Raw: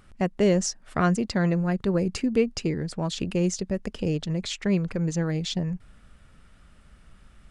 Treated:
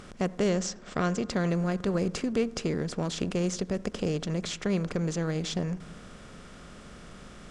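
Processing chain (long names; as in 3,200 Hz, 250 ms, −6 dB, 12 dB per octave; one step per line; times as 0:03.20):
compressor on every frequency bin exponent 0.6
0:00.50–0:01.30: elliptic low-pass filter 8,000 Hz, stop band 40 dB
convolution reverb RT60 1.0 s, pre-delay 63 ms, DRR 19.5 dB
level −6.5 dB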